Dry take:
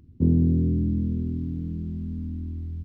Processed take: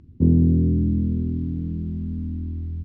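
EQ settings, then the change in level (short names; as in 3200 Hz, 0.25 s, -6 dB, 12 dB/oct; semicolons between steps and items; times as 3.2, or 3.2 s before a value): air absorption 86 m; +3.5 dB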